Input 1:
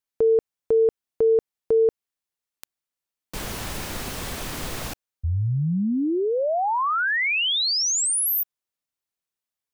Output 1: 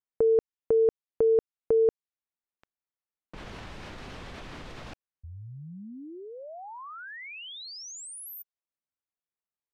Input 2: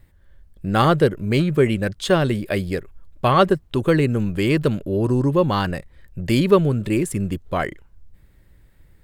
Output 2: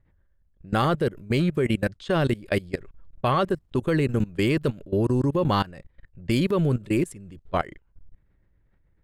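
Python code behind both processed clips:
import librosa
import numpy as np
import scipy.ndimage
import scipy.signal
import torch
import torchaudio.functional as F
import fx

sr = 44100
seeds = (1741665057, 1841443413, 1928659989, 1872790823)

y = fx.env_lowpass(x, sr, base_hz=1900.0, full_db=-17.0)
y = fx.level_steps(y, sr, step_db=21)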